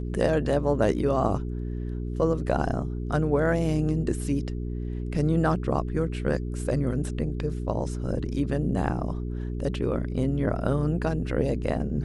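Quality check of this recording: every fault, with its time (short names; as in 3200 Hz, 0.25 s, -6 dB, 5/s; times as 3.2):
hum 60 Hz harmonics 7 -31 dBFS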